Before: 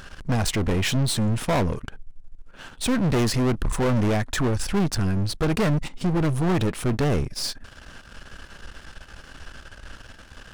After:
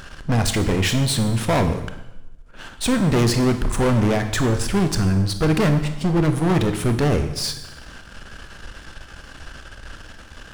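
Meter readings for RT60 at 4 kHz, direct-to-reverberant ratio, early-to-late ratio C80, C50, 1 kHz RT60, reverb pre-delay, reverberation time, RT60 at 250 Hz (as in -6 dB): 0.90 s, 7.5 dB, 11.5 dB, 10.0 dB, 0.95 s, 22 ms, 1.0 s, 1.1 s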